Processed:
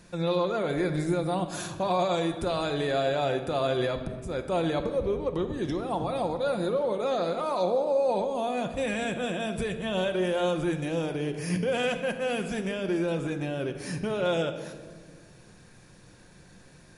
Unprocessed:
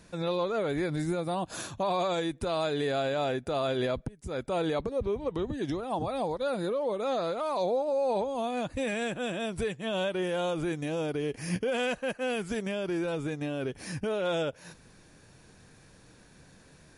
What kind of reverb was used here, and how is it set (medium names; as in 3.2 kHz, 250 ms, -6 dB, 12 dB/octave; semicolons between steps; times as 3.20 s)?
simulated room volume 1800 m³, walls mixed, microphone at 0.91 m; trim +1 dB